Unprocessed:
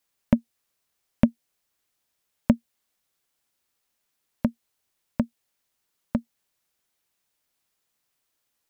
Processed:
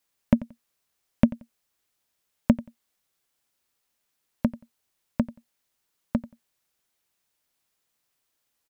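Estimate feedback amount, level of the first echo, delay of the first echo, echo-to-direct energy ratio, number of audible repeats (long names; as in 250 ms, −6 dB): 21%, −18.5 dB, 89 ms, −18.5 dB, 2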